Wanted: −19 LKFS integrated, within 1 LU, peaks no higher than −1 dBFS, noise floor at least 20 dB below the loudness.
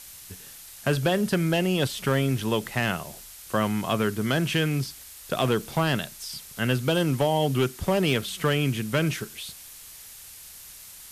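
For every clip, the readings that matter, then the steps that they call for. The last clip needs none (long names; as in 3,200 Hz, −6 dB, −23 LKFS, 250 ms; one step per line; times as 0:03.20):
share of clipped samples 0.4%; peaks flattened at −14.5 dBFS; background noise floor −45 dBFS; target noise floor −46 dBFS; integrated loudness −26.0 LKFS; sample peak −14.5 dBFS; target loudness −19.0 LKFS
→ clipped peaks rebuilt −14.5 dBFS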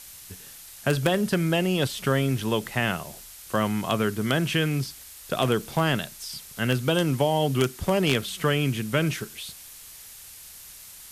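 share of clipped samples 0.0%; background noise floor −45 dBFS; target noise floor −46 dBFS
→ broadband denoise 6 dB, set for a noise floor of −45 dBFS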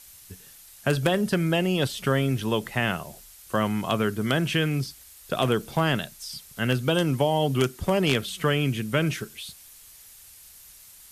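background noise floor −50 dBFS; integrated loudness −25.5 LKFS; sample peak −5.5 dBFS; target loudness −19.0 LKFS
→ level +6.5 dB
brickwall limiter −1 dBFS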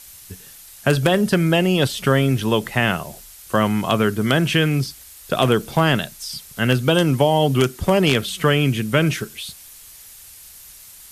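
integrated loudness −19.0 LKFS; sample peak −1.0 dBFS; background noise floor −43 dBFS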